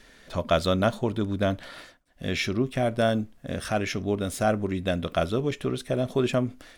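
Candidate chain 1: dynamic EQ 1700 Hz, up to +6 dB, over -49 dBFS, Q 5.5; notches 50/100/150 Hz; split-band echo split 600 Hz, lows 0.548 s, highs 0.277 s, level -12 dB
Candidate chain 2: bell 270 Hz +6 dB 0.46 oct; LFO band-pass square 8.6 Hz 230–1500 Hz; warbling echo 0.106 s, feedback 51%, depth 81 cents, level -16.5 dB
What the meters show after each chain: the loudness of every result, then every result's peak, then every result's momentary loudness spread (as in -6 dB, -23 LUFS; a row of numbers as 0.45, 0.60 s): -27.0, -33.0 LUFS; -7.0, -16.0 dBFS; 9, 10 LU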